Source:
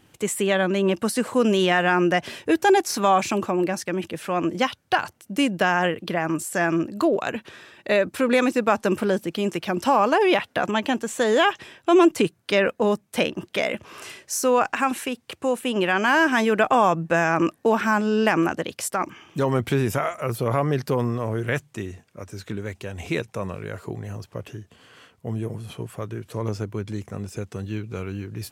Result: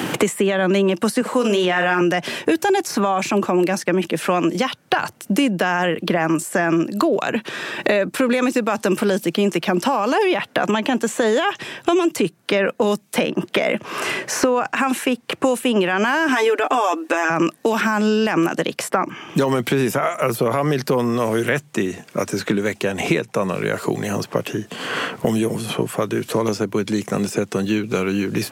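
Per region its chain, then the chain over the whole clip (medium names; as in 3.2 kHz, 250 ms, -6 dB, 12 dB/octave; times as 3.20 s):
1.21–2.01 s: high-pass 280 Hz 6 dB/octave + doubling 44 ms -8 dB
16.28–17.30 s: brick-wall FIR high-pass 240 Hz + comb 6.9 ms, depth 61%
whole clip: high-pass 140 Hz 24 dB/octave; peak limiter -15 dBFS; three bands compressed up and down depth 100%; trim +6 dB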